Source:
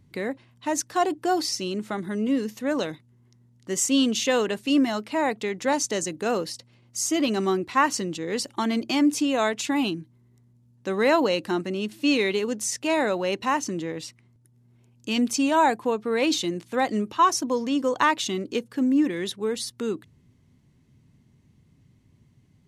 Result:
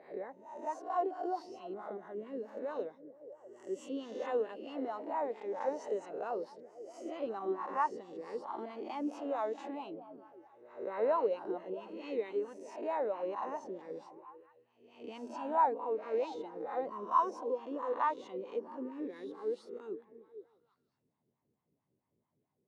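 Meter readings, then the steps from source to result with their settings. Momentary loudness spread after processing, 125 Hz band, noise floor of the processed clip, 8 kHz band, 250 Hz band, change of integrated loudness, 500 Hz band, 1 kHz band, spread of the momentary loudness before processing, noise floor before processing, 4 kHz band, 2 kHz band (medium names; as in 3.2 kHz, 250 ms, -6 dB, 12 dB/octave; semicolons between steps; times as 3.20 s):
16 LU, under -20 dB, -83 dBFS, under -30 dB, -19.0 dB, -12.5 dB, -9.5 dB, -9.0 dB, 10 LU, -60 dBFS, -28.0 dB, -20.5 dB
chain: reverse spectral sustain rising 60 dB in 0.76 s; repeats whose band climbs or falls 160 ms, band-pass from 160 Hz, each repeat 0.7 oct, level -8 dB; wah-wah 4.5 Hz 410–1000 Hz, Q 4; trim -6 dB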